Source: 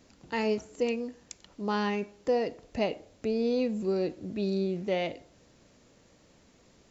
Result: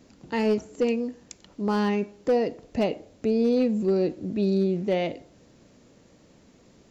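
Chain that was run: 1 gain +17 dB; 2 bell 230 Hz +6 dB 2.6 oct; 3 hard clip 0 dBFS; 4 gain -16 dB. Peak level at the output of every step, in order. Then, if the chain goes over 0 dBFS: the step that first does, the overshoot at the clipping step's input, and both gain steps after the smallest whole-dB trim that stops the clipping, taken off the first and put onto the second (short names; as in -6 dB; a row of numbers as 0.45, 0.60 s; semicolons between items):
+1.0, +4.0, 0.0, -16.0 dBFS; step 1, 4.0 dB; step 1 +13 dB, step 4 -12 dB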